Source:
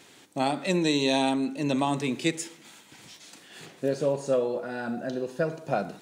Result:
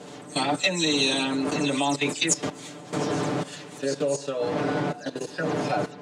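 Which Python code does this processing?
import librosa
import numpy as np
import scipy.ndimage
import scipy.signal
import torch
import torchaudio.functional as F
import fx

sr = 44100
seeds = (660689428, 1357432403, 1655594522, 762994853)

y = fx.spec_delay(x, sr, highs='early', ms=103)
y = fx.dmg_wind(y, sr, seeds[0], corner_hz=370.0, level_db=-28.0)
y = scipy.signal.sosfilt(scipy.signal.cheby1(2, 1.0, [160.0, 7300.0], 'bandpass', fs=sr, output='sos'), y)
y = fx.level_steps(y, sr, step_db=16)
y = fx.tilt_eq(y, sr, slope=2.5)
y = y + 0.81 * np.pad(y, (int(6.8 * sr / 1000.0), 0))[:len(y)]
y = y * 10.0 ** (7.5 / 20.0)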